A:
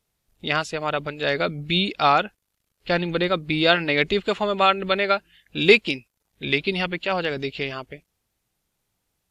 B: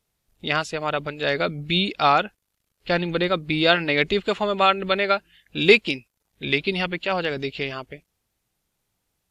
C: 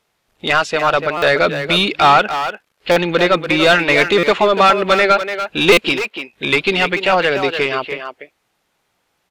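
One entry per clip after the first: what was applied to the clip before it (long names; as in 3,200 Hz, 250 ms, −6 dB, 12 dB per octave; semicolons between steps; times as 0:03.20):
no processing that can be heard
mid-hump overdrive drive 21 dB, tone 2,000 Hz, clips at −1 dBFS; far-end echo of a speakerphone 290 ms, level −7 dB; buffer that repeats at 0:01.17/0:02.91/0:04.18/0:05.72, samples 256, times 8; level +1 dB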